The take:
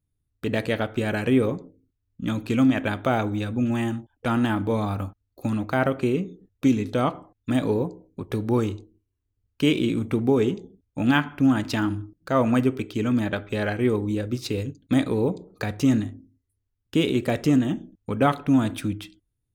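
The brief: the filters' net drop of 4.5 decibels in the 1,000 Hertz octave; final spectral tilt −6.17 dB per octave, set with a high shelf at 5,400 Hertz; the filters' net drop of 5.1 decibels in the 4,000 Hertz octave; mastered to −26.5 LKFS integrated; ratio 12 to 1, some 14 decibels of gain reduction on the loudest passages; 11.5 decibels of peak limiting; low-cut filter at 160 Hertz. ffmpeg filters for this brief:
ffmpeg -i in.wav -af "highpass=160,equalizer=frequency=1000:width_type=o:gain=-6,equalizer=frequency=4000:width_type=o:gain=-4,highshelf=frequency=5400:gain=-7,acompressor=threshold=-30dB:ratio=12,volume=12.5dB,alimiter=limit=-15.5dB:level=0:latency=1" out.wav

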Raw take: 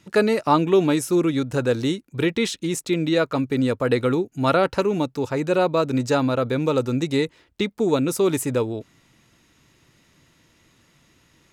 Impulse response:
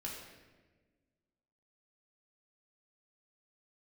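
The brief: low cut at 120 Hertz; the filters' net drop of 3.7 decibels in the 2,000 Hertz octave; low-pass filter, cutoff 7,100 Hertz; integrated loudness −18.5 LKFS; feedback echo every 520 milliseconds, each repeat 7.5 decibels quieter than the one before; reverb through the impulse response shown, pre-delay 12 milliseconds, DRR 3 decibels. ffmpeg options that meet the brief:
-filter_complex "[0:a]highpass=120,lowpass=7100,equalizer=frequency=2000:width_type=o:gain=-5,aecho=1:1:520|1040|1560|2080|2600:0.422|0.177|0.0744|0.0312|0.0131,asplit=2[link_01][link_02];[1:a]atrim=start_sample=2205,adelay=12[link_03];[link_02][link_03]afir=irnorm=-1:irlink=0,volume=-2.5dB[link_04];[link_01][link_04]amix=inputs=2:normalize=0,volume=1.5dB"

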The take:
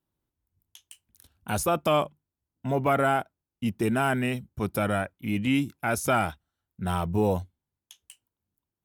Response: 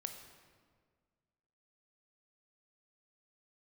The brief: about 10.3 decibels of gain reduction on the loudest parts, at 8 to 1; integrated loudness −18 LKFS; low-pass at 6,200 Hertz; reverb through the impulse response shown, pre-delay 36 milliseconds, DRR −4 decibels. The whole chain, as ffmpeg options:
-filter_complex "[0:a]lowpass=6200,acompressor=threshold=-30dB:ratio=8,asplit=2[link_01][link_02];[1:a]atrim=start_sample=2205,adelay=36[link_03];[link_02][link_03]afir=irnorm=-1:irlink=0,volume=6dB[link_04];[link_01][link_04]amix=inputs=2:normalize=0,volume=12.5dB"

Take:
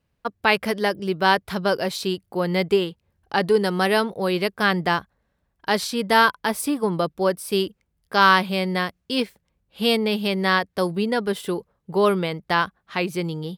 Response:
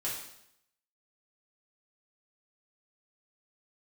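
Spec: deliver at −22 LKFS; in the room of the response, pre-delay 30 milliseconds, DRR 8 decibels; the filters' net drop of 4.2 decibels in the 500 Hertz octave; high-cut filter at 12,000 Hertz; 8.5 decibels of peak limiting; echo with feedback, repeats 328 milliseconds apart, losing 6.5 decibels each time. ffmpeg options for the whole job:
-filter_complex "[0:a]lowpass=12000,equalizer=frequency=500:width_type=o:gain=-5.5,alimiter=limit=-11dB:level=0:latency=1,aecho=1:1:328|656|984|1312|1640|1968:0.473|0.222|0.105|0.0491|0.0231|0.0109,asplit=2[link_01][link_02];[1:a]atrim=start_sample=2205,adelay=30[link_03];[link_02][link_03]afir=irnorm=-1:irlink=0,volume=-11.5dB[link_04];[link_01][link_04]amix=inputs=2:normalize=0,volume=2dB"

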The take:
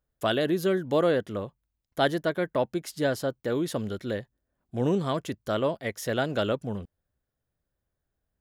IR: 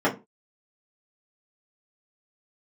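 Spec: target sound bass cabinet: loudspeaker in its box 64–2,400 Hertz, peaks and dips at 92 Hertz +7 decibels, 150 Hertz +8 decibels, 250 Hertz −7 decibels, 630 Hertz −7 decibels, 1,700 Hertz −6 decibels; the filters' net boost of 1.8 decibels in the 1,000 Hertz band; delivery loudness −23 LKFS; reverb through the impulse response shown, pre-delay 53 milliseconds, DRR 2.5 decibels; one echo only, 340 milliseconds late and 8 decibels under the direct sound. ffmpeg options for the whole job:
-filter_complex "[0:a]equalizer=frequency=1000:width_type=o:gain=5,aecho=1:1:340:0.398,asplit=2[link_01][link_02];[1:a]atrim=start_sample=2205,adelay=53[link_03];[link_02][link_03]afir=irnorm=-1:irlink=0,volume=-18.5dB[link_04];[link_01][link_04]amix=inputs=2:normalize=0,highpass=frequency=64:width=0.5412,highpass=frequency=64:width=1.3066,equalizer=frequency=92:width_type=q:width=4:gain=7,equalizer=frequency=150:width_type=q:width=4:gain=8,equalizer=frequency=250:width_type=q:width=4:gain=-7,equalizer=frequency=630:width_type=q:width=4:gain=-7,equalizer=frequency=1700:width_type=q:width=4:gain=-6,lowpass=frequency=2400:width=0.5412,lowpass=frequency=2400:width=1.3066,volume=2dB"

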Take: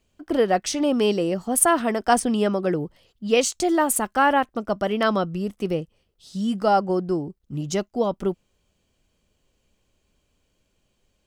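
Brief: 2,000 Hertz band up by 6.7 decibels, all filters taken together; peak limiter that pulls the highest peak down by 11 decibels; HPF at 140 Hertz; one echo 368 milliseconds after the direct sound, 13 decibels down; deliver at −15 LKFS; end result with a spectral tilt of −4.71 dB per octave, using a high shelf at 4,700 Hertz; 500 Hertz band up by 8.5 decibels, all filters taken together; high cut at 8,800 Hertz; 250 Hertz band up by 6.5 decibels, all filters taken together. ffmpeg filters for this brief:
ffmpeg -i in.wav -af "highpass=140,lowpass=8800,equalizer=frequency=250:width_type=o:gain=6,equalizer=frequency=500:width_type=o:gain=8.5,equalizer=frequency=2000:width_type=o:gain=7.5,highshelf=frequency=4700:gain=3.5,alimiter=limit=-9dB:level=0:latency=1,aecho=1:1:368:0.224,volume=4.5dB" out.wav

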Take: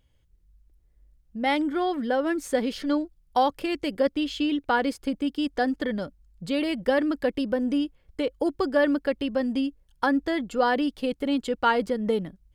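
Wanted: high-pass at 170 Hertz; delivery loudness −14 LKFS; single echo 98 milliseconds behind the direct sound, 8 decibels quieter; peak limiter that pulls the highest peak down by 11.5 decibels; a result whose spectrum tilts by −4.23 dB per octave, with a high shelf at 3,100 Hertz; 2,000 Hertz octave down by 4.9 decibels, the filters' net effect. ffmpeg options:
ffmpeg -i in.wav -af "highpass=170,equalizer=frequency=2000:width_type=o:gain=-4.5,highshelf=frequency=3100:gain=-6.5,alimiter=limit=-23dB:level=0:latency=1,aecho=1:1:98:0.398,volume=17dB" out.wav

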